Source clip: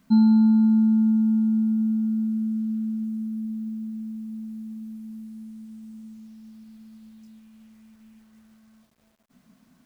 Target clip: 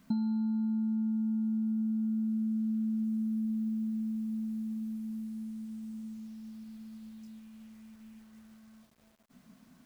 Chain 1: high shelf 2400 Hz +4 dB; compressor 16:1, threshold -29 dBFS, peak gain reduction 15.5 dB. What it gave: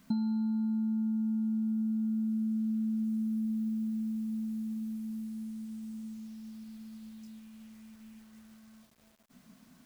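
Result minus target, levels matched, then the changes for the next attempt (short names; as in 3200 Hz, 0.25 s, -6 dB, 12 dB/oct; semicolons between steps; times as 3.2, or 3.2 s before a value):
4000 Hz band +3.0 dB
remove: high shelf 2400 Hz +4 dB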